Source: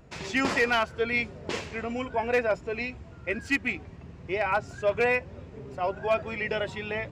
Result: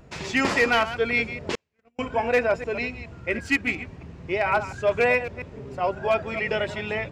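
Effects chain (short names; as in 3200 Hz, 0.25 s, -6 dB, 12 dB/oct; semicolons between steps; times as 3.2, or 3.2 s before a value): reverse delay 0.139 s, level -12 dB; 1.55–1.99 gate -26 dBFS, range -45 dB; gain +3.5 dB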